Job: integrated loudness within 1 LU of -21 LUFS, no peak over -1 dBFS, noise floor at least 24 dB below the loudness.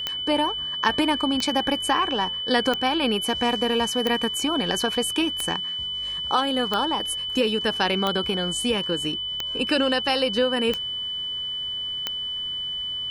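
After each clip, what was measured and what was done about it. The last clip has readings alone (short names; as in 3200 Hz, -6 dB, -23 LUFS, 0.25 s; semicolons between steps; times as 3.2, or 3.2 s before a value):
clicks 10; steady tone 3000 Hz; tone level -27 dBFS; loudness -23.5 LUFS; peak -7.0 dBFS; loudness target -21.0 LUFS
-> de-click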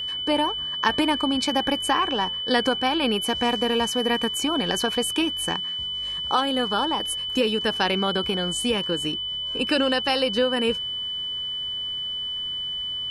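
clicks 0; steady tone 3000 Hz; tone level -27 dBFS
-> notch 3000 Hz, Q 30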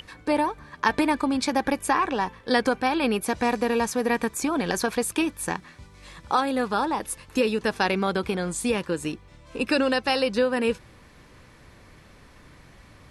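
steady tone none; loudness -25.0 LUFS; peak -7.5 dBFS; loudness target -21.0 LUFS
-> gain +4 dB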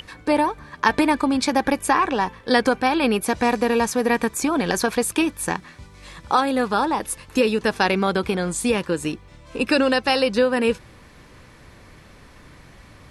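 loudness -21.0 LUFS; peak -3.5 dBFS; noise floor -48 dBFS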